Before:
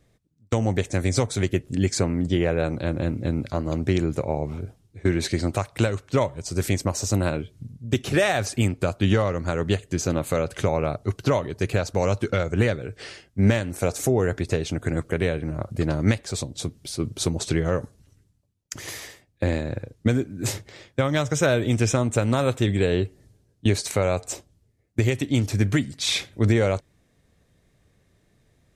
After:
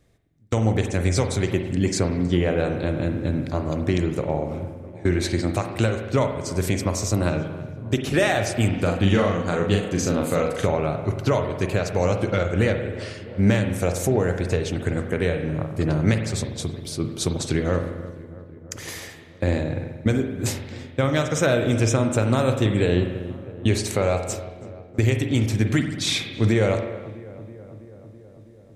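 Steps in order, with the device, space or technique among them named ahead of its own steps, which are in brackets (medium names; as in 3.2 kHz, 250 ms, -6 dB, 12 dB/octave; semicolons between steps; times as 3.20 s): dub delay into a spring reverb (filtered feedback delay 327 ms, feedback 75%, low-pass 1.9 kHz, level -17.5 dB; spring tank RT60 1.2 s, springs 45 ms, chirp 50 ms, DRR 5.5 dB); 8.69–10.67 s: doubling 41 ms -3.5 dB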